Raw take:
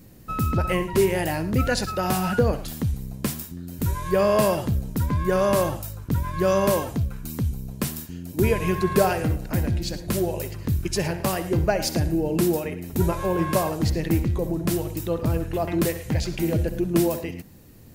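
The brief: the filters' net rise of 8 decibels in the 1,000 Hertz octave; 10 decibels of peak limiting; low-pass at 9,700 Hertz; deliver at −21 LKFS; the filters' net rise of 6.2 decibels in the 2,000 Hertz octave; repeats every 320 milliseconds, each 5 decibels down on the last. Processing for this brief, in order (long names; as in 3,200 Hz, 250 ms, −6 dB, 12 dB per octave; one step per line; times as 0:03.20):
low-pass filter 9,700 Hz
parametric band 1,000 Hz +8.5 dB
parametric band 2,000 Hz +5 dB
brickwall limiter −13.5 dBFS
repeating echo 320 ms, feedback 56%, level −5 dB
level +2 dB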